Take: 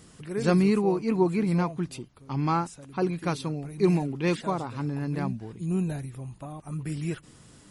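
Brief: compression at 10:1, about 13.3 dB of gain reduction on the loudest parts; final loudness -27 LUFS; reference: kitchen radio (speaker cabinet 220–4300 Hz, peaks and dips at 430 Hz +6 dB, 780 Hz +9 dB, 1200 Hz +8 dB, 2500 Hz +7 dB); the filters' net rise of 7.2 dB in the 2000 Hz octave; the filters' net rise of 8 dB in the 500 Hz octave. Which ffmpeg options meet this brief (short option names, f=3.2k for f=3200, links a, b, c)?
-af "equalizer=f=500:t=o:g=6,equalizer=f=2k:t=o:g=3.5,acompressor=threshold=-28dB:ratio=10,highpass=220,equalizer=f=430:t=q:w=4:g=6,equalizer=f=780:t=q:w=4:g=9,equalizer=f=1.2k:t=q:w=4:g=8,equalizer=f=2.5k:t=q:w=4:g=7,lowpass=f=4.3k:w=0.5412,lowpass=f=4.3k:w=1.3066,volume=5dB"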